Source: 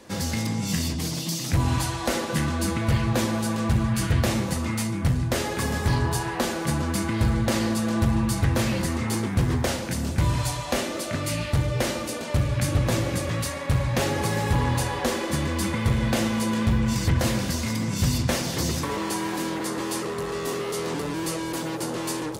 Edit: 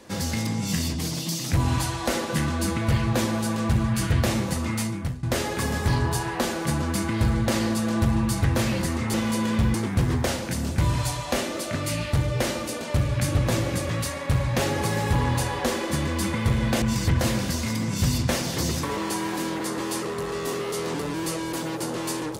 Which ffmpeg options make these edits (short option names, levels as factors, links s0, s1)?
-filter_complex "[0:a]asplit=5[s0][s1][s2][s3][s4];[s0]atrim=end=5.23,asetpts=PTS-STARTPTS,afade=t=out:st=4.85:d=0.38:silence=0.112202[s5];[s1]atrim=start=5.23:end=9.142,asetpts=PTS-STARTPTS,afade=t=in:d=0.004:c=hsin:silence=0.112202[s6];[s2]atrim=start=16.218:end=16.822[s7];[s3]atrim=start=9.138:end=16.222[s8];[s4]atrim=start=16.818[s9];[s5][s6]concat=n=2:v=0:a=1[s10];[s10][s7]acrossfade=d=0.004:c1=hsin:c2=hsin[s11];[s11][s8]acrossfade=d=0.004:c1=hsin:c2=hsin[s12];[s12][s9]acrossfade=d=0.004:c1=hsin:c2=hsin"